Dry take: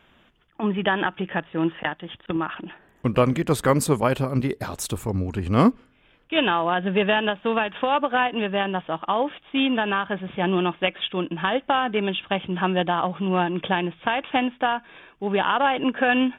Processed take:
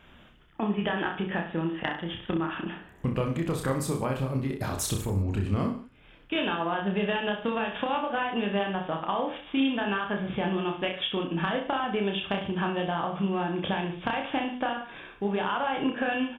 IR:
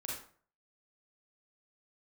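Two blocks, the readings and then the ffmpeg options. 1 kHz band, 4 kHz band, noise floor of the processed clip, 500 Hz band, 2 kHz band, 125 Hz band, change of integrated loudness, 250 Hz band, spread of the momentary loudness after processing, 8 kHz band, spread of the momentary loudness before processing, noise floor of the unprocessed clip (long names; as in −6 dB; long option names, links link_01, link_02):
−7.0 dB, −5.5 dB, −54 dBFS, −6.5 dB, −6.5 dB, −3.5 dB, −6.0 dB, −5.0 dB, 4 LU, −3.0 dB, 8 LU, −60 dBFS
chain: -af "lowshelf=frequency=160:gain=6,acompressor=threshold=-27dB:ratio=6,aecho=1:1:30|63|99.3|139.2|183.2:0.631|0.398|0.251|0.158|0.1"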